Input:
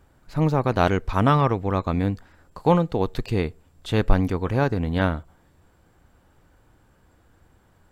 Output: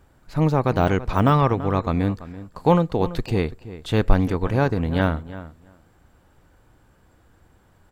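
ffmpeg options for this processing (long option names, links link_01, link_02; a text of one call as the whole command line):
ffmpeg -i in.wav -filter_complex "[0:a]deesser=0.75,asplit=2[link_01][link_02];[link_02]adelay=335,lowpass=frequency=2800:poles=1,volume=-15dB,asplit=2[link_03][link_04];[link_04]adelay=335,lowpass=frequency=2800:poles=1,volume=0.15[link_05];[link_01][link_03][link_05]amix=inputs=3:normalize=0,volume=1.5dB" out.wav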